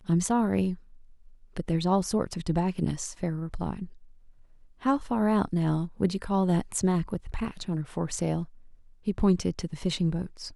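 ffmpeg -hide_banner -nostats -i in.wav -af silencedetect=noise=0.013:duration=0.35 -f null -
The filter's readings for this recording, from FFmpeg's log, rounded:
silence_start: 0.75
silence_end: 1.57 | silence_duration: 0.82
silence_start: 3.86
silence_end: 4.83 | silence_duration: 0.97
silence_start: 8.45
silence_end: 9.07 | silence_duration: 0.62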